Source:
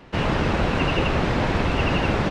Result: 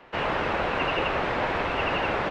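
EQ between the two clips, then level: three-band isolator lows -14 dB, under 410 Hz, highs -12 dB, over 3.3 kHz; 0.0 dB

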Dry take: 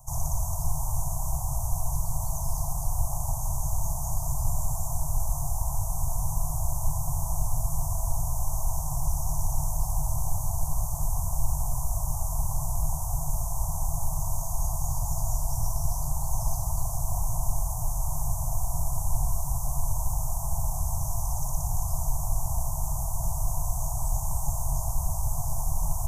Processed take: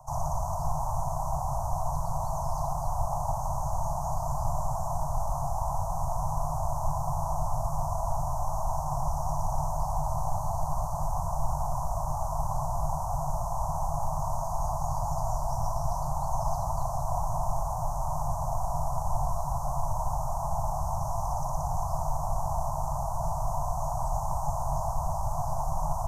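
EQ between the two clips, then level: three-band isolator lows -13 dB, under 200 Hz, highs -23 dB, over 3.8 kHz; +8.5 dB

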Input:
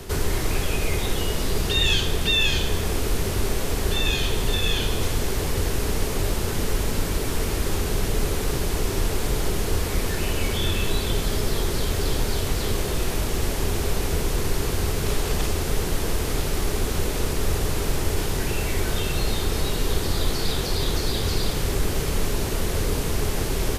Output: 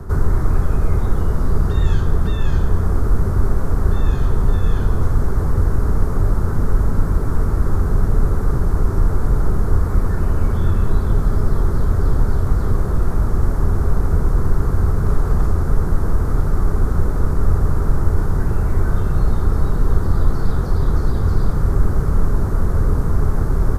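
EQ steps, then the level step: tone controls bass +12 dB, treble +2 dB; resonant high shelf 1.9 kHz -13 dB, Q 3; -2.5 dB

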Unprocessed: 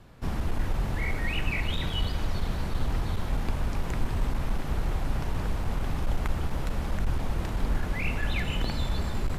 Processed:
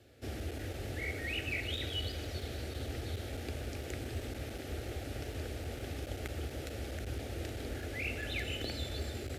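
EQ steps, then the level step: high-pass 73 Hz 24 dB/octave; static phaser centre 420 Hz, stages 4; -2.0 dB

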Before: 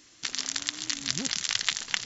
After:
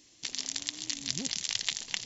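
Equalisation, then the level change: peaking EQ 1.4 kHz -11.5 dB 0.84 oct; -3.0 dB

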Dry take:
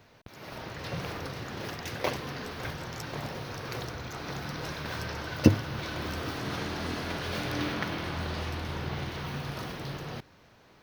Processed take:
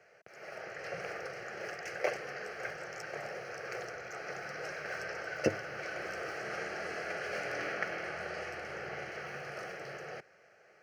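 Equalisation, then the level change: three-band isolator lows -18 dB, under 190 Hz, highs -22 dB, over 7.9 kHz; bass shelf 120 Hz -10.5 dB; static phaser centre 990 Hz, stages 6; +1.0 dB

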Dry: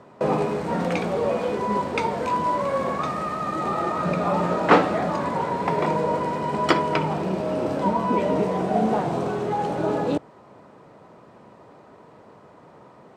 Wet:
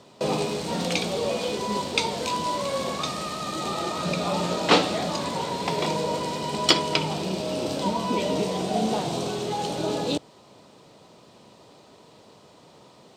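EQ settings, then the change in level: resonant high shelf 2.5 kHz +13.5 dB, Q 1.5; -3.0 dB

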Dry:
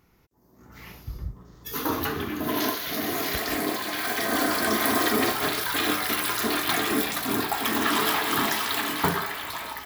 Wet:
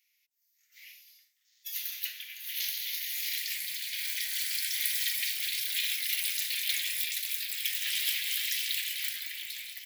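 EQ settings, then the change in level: steep high-pass 2.1 kHz 48 dB/octave; -2.0 dB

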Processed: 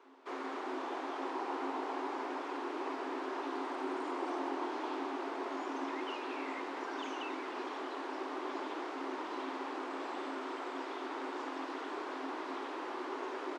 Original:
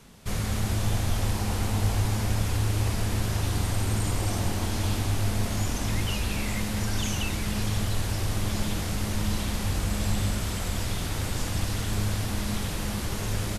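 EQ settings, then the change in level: rippled Chebyshev high-pass 260 Hz, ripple 9 dB; tape spacing loss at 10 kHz 32 dB; +4.5 dB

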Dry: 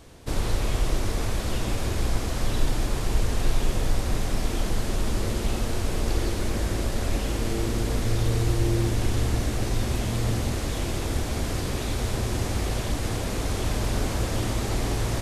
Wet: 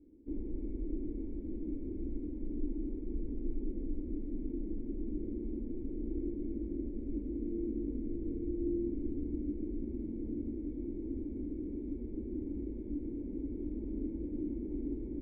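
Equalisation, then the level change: cascade formant filter u; static phaser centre 310 Hz, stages 4; static phaser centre 2.7 kHz, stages 4; +1.5 dB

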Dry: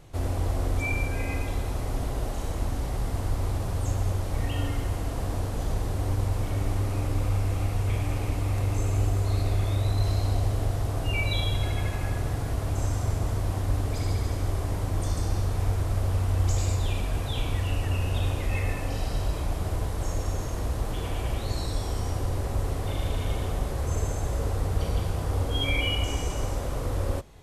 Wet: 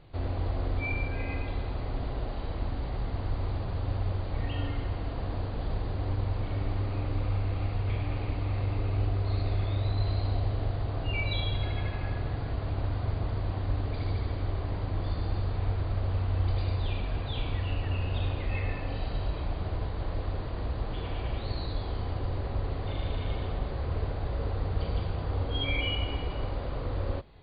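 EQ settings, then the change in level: brick-wall FIR low-pass 4.8 kHz; -3.5 dB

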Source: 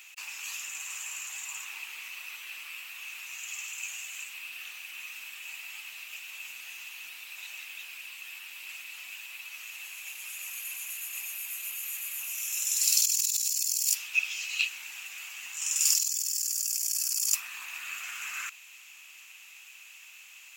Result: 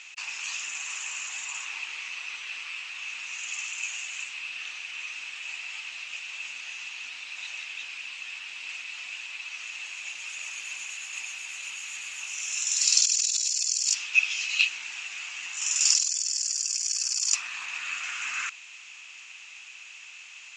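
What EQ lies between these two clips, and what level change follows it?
steep low-pass 7 kHz 36 dB/octave; +5.5 dB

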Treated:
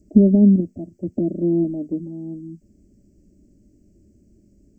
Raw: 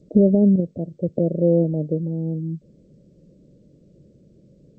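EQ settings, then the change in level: tone controls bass +11 dB, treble +14 dB; static phaser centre 750 Hz, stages 8; dynamic bell 250 Hz, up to +7 dB, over -28 dBFS, Q 0.98; -4.0 dB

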